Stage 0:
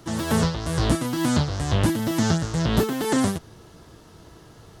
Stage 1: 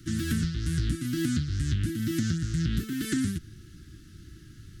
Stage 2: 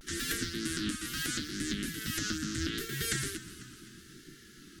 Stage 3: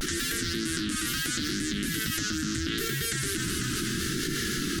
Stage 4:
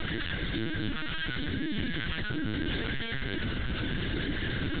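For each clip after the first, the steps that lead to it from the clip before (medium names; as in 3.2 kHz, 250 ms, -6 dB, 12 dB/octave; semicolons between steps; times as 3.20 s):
elliptic band-stop 330–1500 Hz, stop band 50 dB; bass shelf 150 Hz +8.5 dB; compression, threshold -21 dBFS, peak gain reduction 10 dB; trim -3 dB
spectral gate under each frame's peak -10 dB weak; two-band feedback delay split 310 Hz, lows 465 ms, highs 247 ms, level -15.5 dB; vibrato 0.75 Hz 77 cents; trim +4 dB
level flattener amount 100%
LPC vocoder at 8 kHz pitch kept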